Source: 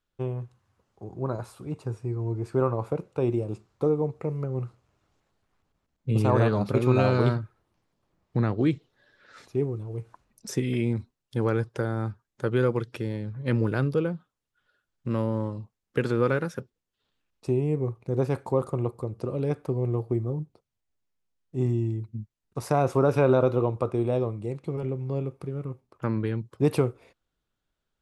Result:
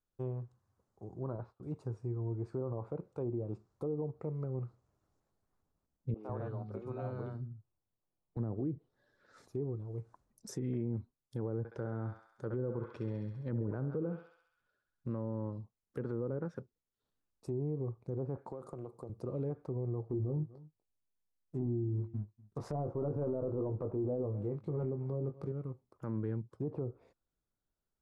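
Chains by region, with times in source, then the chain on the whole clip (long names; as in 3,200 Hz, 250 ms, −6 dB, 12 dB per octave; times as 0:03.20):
0:01.23–0:01.63: noise gate −50 dBFS, range −18 dB + high-frequency loss of the air 330 metres
0:06.14–0:08.37: high-shelf EQ 3,700 Hz −10 dB + tuned comb filter 730 Hz, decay 0.29 s, mix 70% + three-band delay without the direct sound mids, highs, lows 50/150 ms, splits 250/4,400 Hz
0:11.58–0:15.08: high-frequency loss of the air 54 metres + feedback echo with a high-pass in the loop 67 ms, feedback 71%, high-pass 750 Hz, level −5 dB
0:18.37–0:19.10: high-pass filter 150 Hz + downward compressor 16 to 1, threshold −31 dBFS + highs frequency-modulated by the lows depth 0.14 ms
0:20.07–0:25.52: leveller curve on the samples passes 1 + double-tracking delay 20 ms −7.5 dB + single-tap delay 244 ms −22.5 dB
whole clip: treble cut that deepens with the level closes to 690 Hz, closed at −19.5 dBFS; parametric band 2,700 Hz −12.5 dB 1.4 octaves; brickwall limiter −21 dBFS; level −7 dB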